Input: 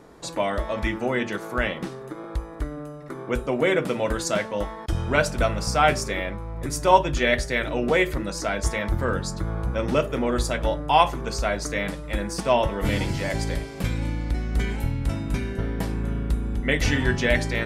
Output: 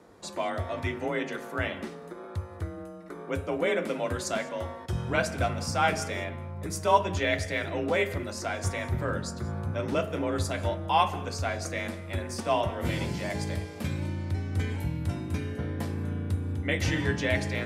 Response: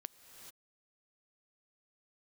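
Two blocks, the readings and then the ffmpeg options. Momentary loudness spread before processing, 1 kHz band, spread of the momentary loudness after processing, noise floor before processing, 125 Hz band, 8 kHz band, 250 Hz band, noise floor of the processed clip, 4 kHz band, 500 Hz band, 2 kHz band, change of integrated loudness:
10 LU, −5.5 dB, 9 LU, −38 dBFS, −3.0 dB, −5.5 dB, −5.5 dB, −43 dBFS, −5.5 dB, −5.5 dB, −5.5 dB, −5.5 dB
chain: -filter_complex "[0:a]bandreject=frequency=101.5:width_type=h:width=4,bandreject=frequency=203:width_type=h:width=4,bandreject=frequency=304.5:width_type=h:width=4,bandreject=frequency=406:width_type=h:width=4,bandreject=frequency=507.5:width_type=h:width=4,bandreject=frequency=609:width_type=h:width=4,bandreject=frequency=710.5:width_type=h:width=4,bandreject=frequency=812:width_type=h:width=4,bandreject=frequency=913.5:width_type=h:width=4,bandreject=frequency=1015:width_type=h:width=4,bandreject=frequency=1116.5:width_type=h:width=4,bandreject=frequency=1218:width_type=h:width=4,bandreject=frequency=1319.5:width_type=h:width=4,bandreject=frequency=1421:width_type=h:width=4,bandreject=frequency=1522.5:width_type=h:width=4,bandreject=frequency=1624:width_type=h:width=4,bandreject=frequency=1725.5:width_type=h:width=4,bandreject=frequency=1827:width_type=h:width=4,bandreject=frequency=1928.5:width_type=h:width=4,bandreject=frequency=2030:width_type=h:width=4,bandreject=frequency=2131.5:width_type=h:width=4,bandreject=frequency=2233:width_type=h:width=4,bandreject=frequency=2334.5:width_type=h:width=4,bandreject=frequency=2436:width_type=h:width=4,bandreject=frequency=2537.5:width_type=h:width=4,bandreject=frequency=2639:width_type=h:width=4,bandreject=frequency=2740.5:width_type=h:width=4,bandreject=frequency=2842:width_type=h:width=4,bandreject=frequency=2943.5:width_type=h:width=4,bandreject=frequency=3045:width_type=h:width=4,bandreject=frequency=3146.5:width_type=h:width=4,bandreject=frequency=3248:width_type=h:width=4,afreqshift=36[link_01];[1:a]atrim=start_sample=2205,afade=type=out:start_time=0.26:duration=0.01,atrim=end_sample=11907[link_02];[link_01][link_02]afir=irnorm=-1:irlink=0"

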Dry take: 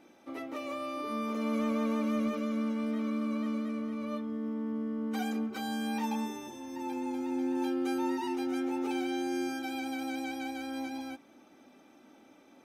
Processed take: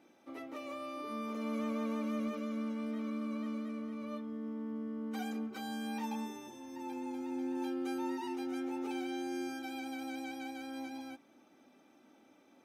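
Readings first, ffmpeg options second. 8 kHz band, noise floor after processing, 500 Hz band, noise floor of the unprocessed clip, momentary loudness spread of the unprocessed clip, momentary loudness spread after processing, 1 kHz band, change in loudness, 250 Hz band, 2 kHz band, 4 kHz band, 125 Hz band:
−5.5 dB, −65 dBFS, −5.5 dB, −59 dBFS, 8 LU, 8 LU, −5.5 dB, −5.5 dB, −5.5 dB, −5.5 dB, −5.5 dB, can't be measured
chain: -af "highpass=76,volume=-5.5dB"

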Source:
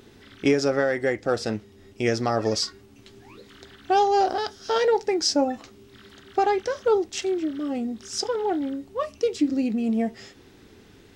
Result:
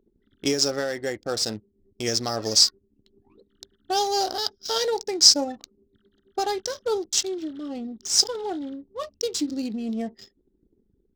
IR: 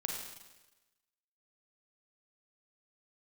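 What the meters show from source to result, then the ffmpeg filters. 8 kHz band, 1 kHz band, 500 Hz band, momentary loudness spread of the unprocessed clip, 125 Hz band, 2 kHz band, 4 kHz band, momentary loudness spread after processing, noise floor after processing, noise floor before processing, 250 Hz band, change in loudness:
+11.0 dB, −5.0 dB, −5.0 dB, 9 LU, −5.0 dB, −5.5 dB, +9.5 dB, 16 LU, −69 dBFS, −52 dBFS, −5.0 dB, +1.5 dB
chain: -af "anlmdn=0.251,aexciter=amount=8.9:drive=2.1:freq=3500,adynamicsmooth=sensitivity=6.5:basefreq=2600,volume=-5dB"

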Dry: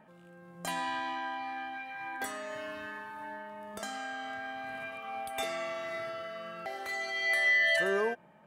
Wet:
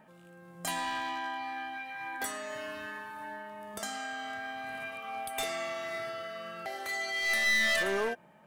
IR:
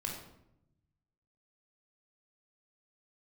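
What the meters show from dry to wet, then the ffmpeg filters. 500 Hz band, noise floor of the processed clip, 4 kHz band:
−1.0 dB, −56 dBFS, +3.0 dB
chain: -af "aeval=exprs='clip(val(0),-1,0.0282)':channel_layout=same,highshelf=frequency=4100:gain=7"

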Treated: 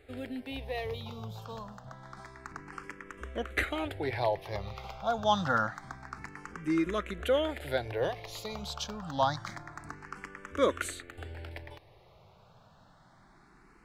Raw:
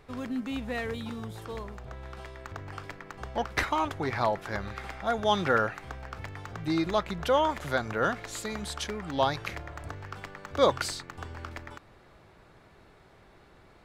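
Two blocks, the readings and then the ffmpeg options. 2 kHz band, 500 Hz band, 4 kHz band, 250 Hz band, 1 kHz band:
−3.5 dB, −2.5 dB, −3.0 dB, −2.5 dB, −3.5 dB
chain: -filter_complex "[0:a]asplit=2[link_01][link_02];[link_02]afreqshift=0.27[link_03];[link_01][link_03]amix=inputs=2:normalize=1"

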